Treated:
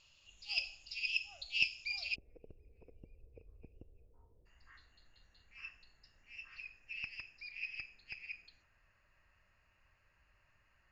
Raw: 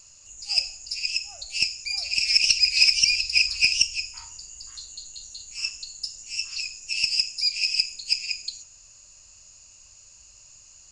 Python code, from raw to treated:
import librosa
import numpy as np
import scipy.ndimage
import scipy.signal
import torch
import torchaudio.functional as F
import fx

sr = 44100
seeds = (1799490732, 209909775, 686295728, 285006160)

y = fx.ladder_lowpass(x, sr, hz=fx.steps((0.0, 3600.0), (2.14, 500.0), (4.45, 2000.0)), resonance_pct=70)
y = y * librosa.db_to_amplitude(1.0)